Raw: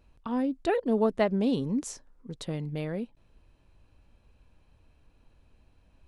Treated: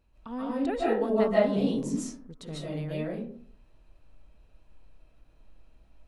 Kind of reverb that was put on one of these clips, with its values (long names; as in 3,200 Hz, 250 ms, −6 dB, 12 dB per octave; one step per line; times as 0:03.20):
comb and all-pass reverb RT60 0.56 s, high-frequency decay 0.4×, pre-delay 110 ms, DRR −7 dB
level −7 dB